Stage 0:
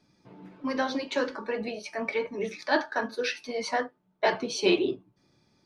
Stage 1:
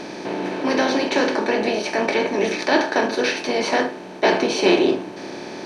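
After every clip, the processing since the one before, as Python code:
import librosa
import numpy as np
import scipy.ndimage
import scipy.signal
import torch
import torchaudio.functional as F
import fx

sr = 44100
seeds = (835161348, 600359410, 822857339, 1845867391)

y = fx.bin_compress(x, sr, power=0.4)
y = fx.peak_eq(y, sr, hz=300.0, db=3.0, octaves=0.77)
y = y * 10.0 ** (2.5 / 20.0)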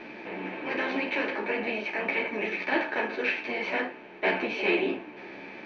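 y = fx.lowpass_res(x, sr, hz=2400.0, q=3.3)
y = fx.ensemble(y, sr)
y = y * 10.0 ** (-8.5 / 20.0)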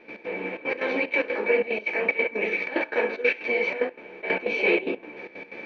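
y = fx.small_body(x, sr, hz=(490.0, 2300.0), ring_ms=55, db=14)
y = fx.step_gate(y, sr, bpm=185, pattern='.x.xxxx.x.xxx', floor_db=-12.0, edge_ms=4.5)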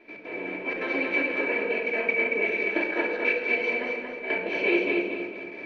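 y = fx.echo_feedback(x, sr, ms=230, feedback_pct=35, wet_db=-4)
y = fx.room_shoebox(y, sr, seeds[0], volume_m3=3200.0, walls='furnished', distance_m=3.0)
y = y * 10.0 ** (-5.0 / 20.0)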